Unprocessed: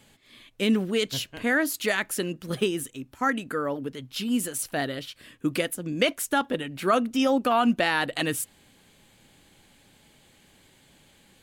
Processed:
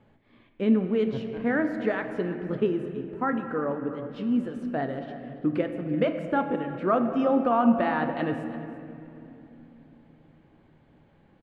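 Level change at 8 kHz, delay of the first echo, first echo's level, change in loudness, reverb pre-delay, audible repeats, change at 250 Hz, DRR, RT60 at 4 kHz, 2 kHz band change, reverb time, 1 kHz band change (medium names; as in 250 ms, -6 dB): under -30 dB, 338 ms, -16.5 dB, -0.5 dB, 9 ms, 1, +2.0 dB, 6.0 dB, 1.6 s, -6.5 dB, 3.0 s, -0.5 dB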